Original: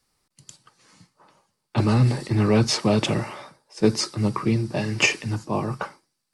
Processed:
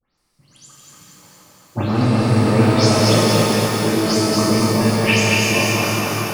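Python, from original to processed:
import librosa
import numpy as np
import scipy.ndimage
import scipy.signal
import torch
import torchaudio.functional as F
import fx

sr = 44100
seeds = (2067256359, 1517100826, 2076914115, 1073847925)

y = fx.spec_delay(x, sr, highs='late', ms=174)
y = fx.echo_feedback(y, sr, ms=234, feedback_pct=56, wet_db=-3)
y = fx.rev_shimmer(y, sr, seeds[0], rt60_s=3.4, semitones=12, shimmer_db=-8, drr_db=-4.0)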